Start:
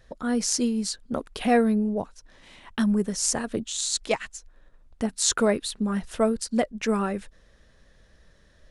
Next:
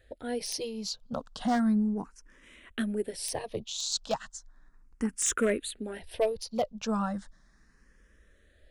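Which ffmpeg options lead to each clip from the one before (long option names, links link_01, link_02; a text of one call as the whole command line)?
ffmpeg -i in.wav -filter_complex "[0:a]aeval=exprs='0.211*(abs(mod(val(0)/0.211+3,4)-2)-1)':channel_layout=same,asplit=2[link_01][link_02];[link_02]afreqshift=0.35[link_03];[link_01][link_03]amix=inputs=2:normalize=1,volume=-2dB" out.wav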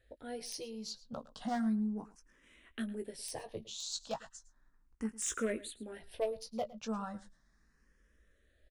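ffmpeg -i in.wav -filter_complex "[0:a]asplit=2[link_01][link_02];[link_02]adelay=18,volume=-8.5dB[link_03];[link_01][link_03]amix=inputs=2:normalize=0,aecho=1:1:109:0.112,volume=-9dB" out.wav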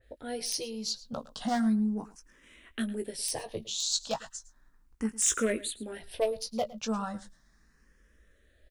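ffmpeg -i in.wav -af "adynamicequalizer=threshold=0.00141:dfrequency=2600:dqfactor=0.7:tfrequency=2600:tqfactor=0.7:attack=5:release=100:ratio=0.375:range=2.5:mode=boostabove:tftype=highshelf,volume=6dB" out.wav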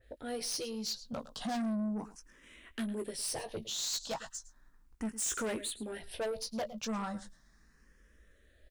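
ffmpeg -i in.wav -af "asoftclip=type=tanh:threshold=-31.5dB" out.wav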